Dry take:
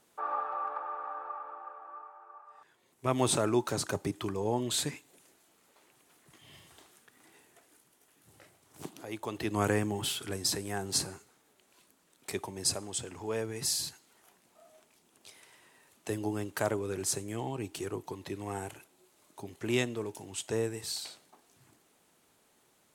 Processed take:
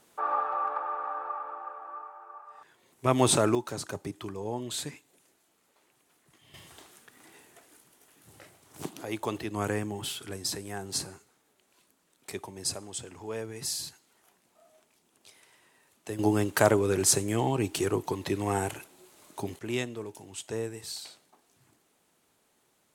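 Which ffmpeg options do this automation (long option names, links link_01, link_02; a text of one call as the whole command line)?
ffmpeg -i in.wav -af "asetnsamples=nb_out_samples=441:pad=0,asendcmd='3.55 volume volume -3.5dB;6.54 volume volume 5.5dB;9.4 volume volume -2dB;16.19 volume volume 9dB;19.59 volume volume -2dB',volume=5dB" out.wav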